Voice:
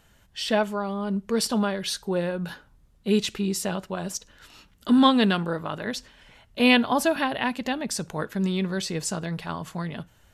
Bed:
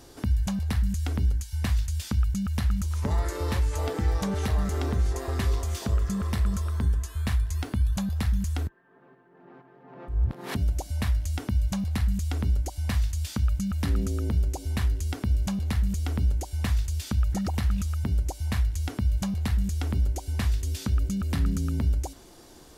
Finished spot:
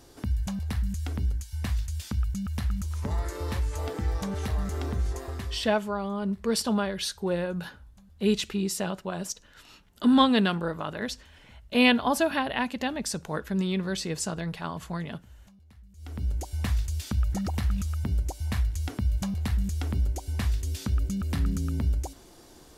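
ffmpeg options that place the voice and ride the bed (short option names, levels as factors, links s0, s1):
-filter_complex "[0:a]adelay=5150,volume=0.794[s0];[1:a]volume=13.3,afade=t=out:st=5.14:d=0.61:silence=0.0630957,afade=t=in:st=15.94:d=0.51:silence=0.0501187[s1];[s0][s1]amix=inputs=2:normalize=0"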